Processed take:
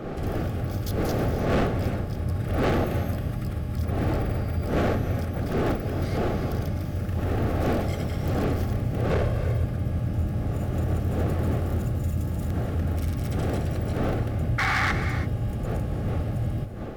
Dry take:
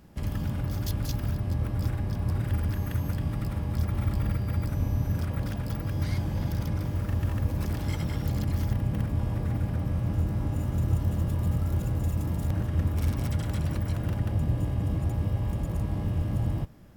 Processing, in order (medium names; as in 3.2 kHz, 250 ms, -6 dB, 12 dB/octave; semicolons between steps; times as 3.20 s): wind noise 510 Hz -28 dBFS; 9.09–9.65 s: comb 1.9 ms, depth 87%; 14.58–14.92 s: painted sound noise 730–2300 Hz -21 dBFS; hard clipper -20 dBFS, distortion -9 dB; Butterworth band-stop 970 Hz, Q 5.3; gated-style reverb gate 360 ms rising, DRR 9 dB